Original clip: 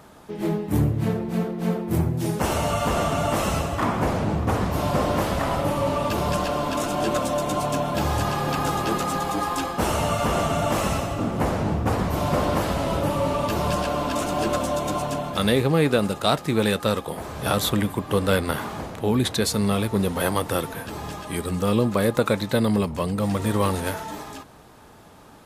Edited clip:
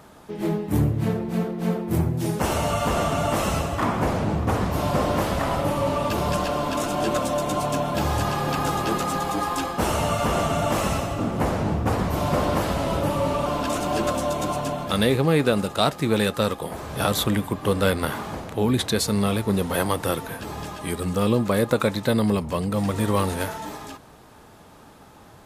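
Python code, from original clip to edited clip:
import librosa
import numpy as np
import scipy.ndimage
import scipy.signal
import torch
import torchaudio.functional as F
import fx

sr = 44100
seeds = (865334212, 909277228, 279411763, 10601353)

y = fx.edit(x, sr, fx.cut(start_s=13.46, length_s=0.46), tone=tone)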